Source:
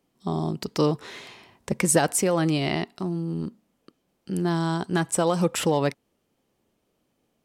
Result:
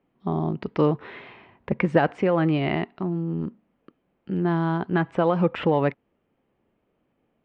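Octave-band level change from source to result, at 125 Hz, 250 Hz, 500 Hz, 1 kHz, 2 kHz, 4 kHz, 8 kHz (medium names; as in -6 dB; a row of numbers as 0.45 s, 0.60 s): +1.5 dB, +1.5 dB, +1.5 dB, +1.5 dB, +1.0 dB, -7.5 dB, under -35 dB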